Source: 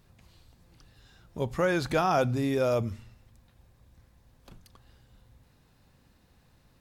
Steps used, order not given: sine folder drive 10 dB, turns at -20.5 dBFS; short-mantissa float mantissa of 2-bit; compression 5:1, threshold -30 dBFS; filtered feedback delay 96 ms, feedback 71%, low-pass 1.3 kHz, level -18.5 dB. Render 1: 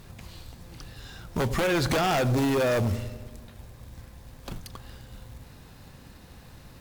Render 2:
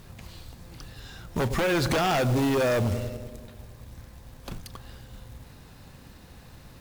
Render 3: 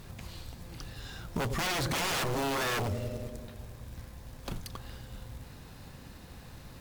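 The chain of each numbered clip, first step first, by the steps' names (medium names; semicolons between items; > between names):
short-mantissa float > compression > filtered feedback delay > sine folder; filtered feedback delay > compression > sine folder > short-mantissa float; filtered feedback delay > short-mantissa float > sine folder > compression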